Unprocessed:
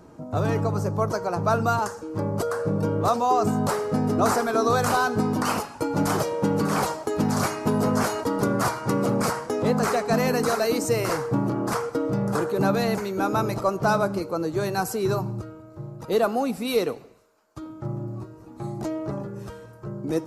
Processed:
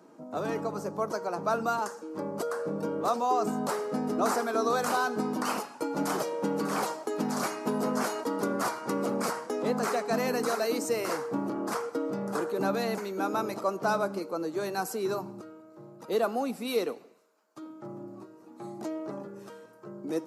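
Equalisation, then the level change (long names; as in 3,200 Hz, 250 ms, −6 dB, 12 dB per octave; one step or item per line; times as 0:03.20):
high-pass filter 200 Hz 24 dB per octave
−5.5 dB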